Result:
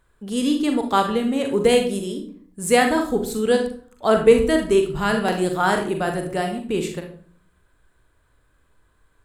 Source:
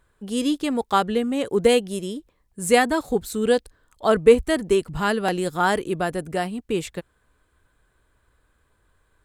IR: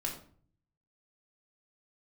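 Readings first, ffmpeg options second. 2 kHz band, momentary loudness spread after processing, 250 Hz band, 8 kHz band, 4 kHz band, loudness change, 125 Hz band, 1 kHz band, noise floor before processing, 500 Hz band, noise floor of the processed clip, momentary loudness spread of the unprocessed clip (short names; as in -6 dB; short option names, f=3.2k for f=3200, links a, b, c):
+1.5 dB, 12 LU, +3.0 dB, +1.5 dB, +1.5 dB, +1.5 dB, +2.0 dB, +1.5 dB, -67 dBFS, +1.5 dB, -63 dBFS, 11 LU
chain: -filter_complex "[0:a]asplit=2[a][b];[1:a]atrim=start_sample=2205,adelay=41[c];[b][c]afir=irnorm=-1:irlink=0,volume=-6dB[d];[a][d]amix=inputs=2:normalize=0"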